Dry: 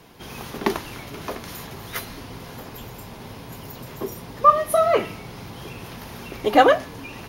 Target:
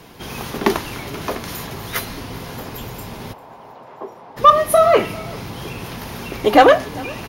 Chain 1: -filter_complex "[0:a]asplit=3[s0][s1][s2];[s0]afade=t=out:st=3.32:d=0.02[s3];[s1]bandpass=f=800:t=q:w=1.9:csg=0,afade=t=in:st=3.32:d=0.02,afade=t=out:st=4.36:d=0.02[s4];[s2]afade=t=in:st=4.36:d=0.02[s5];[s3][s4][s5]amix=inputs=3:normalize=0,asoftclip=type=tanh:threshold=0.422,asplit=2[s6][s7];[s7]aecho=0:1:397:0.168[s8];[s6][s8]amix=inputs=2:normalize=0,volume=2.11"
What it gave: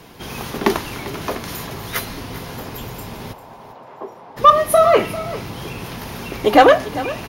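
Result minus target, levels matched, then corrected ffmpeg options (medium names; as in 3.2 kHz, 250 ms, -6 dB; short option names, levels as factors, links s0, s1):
echo-to-direct +7 dB
-filter_complex "[0:a]asplit=3[s0][s1][s2];[s0]afade=t=out:st=3.32:d=0.02[s3];[s1]bandpass=f=800:t=q:w=1.9:csg=0,afade=t=in:st=3.32:d=0.02,afade=t=out:st=4.36:d=0.02[s4];[s2]afade=t=in:st=4.36:d=0.02[s5];[s3][s4][s5]amix=inputs=3:normalize=0,asoftclip=type=tanh:threshold=0.422,asplit=2[s6][s7];[s7]aecho=0:1:397:0.075[s8];[s6][s8]amix=inputs=2:normalize=0,volume=2.11"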